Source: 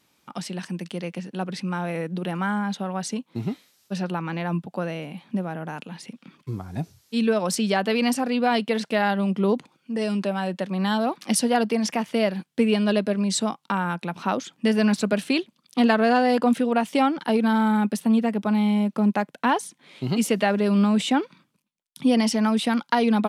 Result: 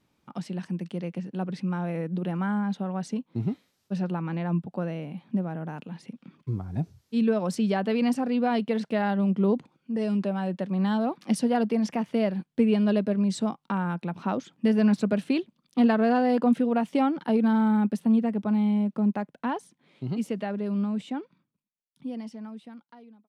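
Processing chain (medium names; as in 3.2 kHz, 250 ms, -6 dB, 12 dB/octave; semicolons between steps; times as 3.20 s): fade out at the end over 5.86 s; tilt EQ -2.5 dB/octave; trim -6 dB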